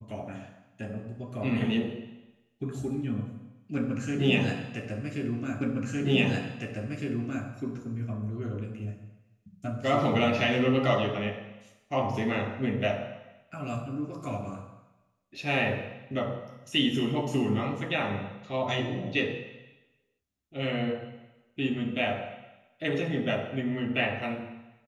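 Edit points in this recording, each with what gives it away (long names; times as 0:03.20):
0:05.61: the same again, the last 1.86 s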